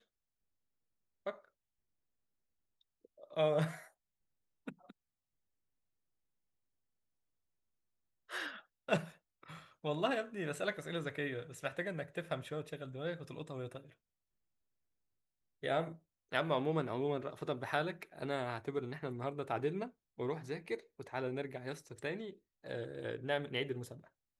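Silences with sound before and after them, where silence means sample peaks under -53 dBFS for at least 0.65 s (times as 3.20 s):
1.45–3.05 s
3.88–4.67 s
4.91–8.29 s
13.92–15.63 s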